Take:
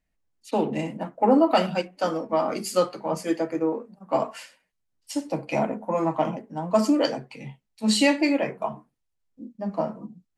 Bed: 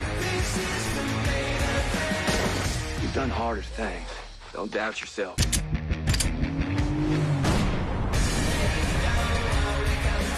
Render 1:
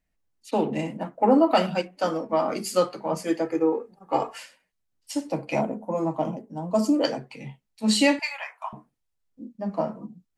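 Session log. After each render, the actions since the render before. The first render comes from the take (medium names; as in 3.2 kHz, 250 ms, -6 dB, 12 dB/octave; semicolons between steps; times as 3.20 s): 3.45–4.38 s: comb 2.4 ms; 5.61–7.04 s: peaking EQ 1.9 kHz -11.5 dB 1.8 oct; 8.19–8.73 s: steep high-pass 870 Hz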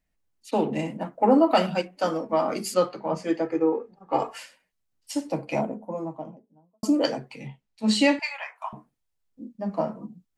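2.74–4.19 s: distance through air 96 m; 5.23–6.83 s: studio fade out; 7.47–8.56 s: distance through air 51 m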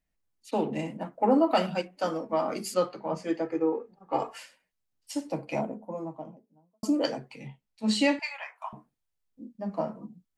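trim -4 dB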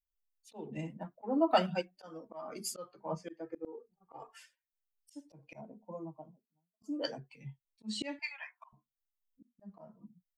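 expander on every frequency bin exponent 1.5; slow attack 330 ms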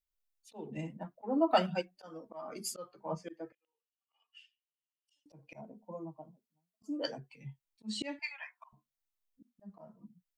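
3.52–5.26 s: ladder band-pass 3 kHz, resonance 85%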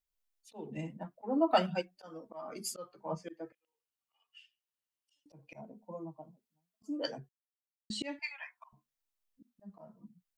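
7.29–7.90 s: mute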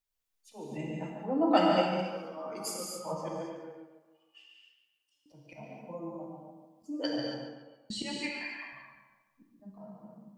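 tape echo 144 ms, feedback 47%, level -6 dB, low-pass 4.1 kHz; gated-style reverb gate 300 ms flat, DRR -1.5 dB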